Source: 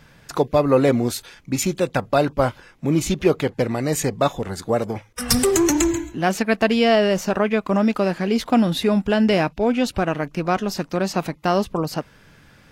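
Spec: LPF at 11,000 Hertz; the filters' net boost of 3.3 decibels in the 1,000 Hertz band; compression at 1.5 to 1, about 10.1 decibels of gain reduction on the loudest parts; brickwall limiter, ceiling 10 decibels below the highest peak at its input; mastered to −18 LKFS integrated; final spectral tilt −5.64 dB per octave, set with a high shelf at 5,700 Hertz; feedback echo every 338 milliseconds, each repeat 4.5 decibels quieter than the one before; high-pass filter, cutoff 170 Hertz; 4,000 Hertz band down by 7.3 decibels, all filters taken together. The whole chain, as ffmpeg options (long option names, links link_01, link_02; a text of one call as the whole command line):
ffmpeg -i in.wav -af "highpass=170,lowpass=11000,equalizer=frequency=1000:width_type=o:gain=5.5,equalizer=frequency=4000:width_type=o:gain=-7,highshelf=frequency=5700:gain=-9,acompressor=threshold=-40dB:ratio=1.5,alimiter=limit=-21.5dB:level=0:latency=1,aecho=1:1:338|676|1014|1352|1690|2028|2366|2704|3042:0.596|0.357|0.214|0.129|0.0772|0.0463|0.0278|0.0167|0.01,volume=13.5dB" out.wav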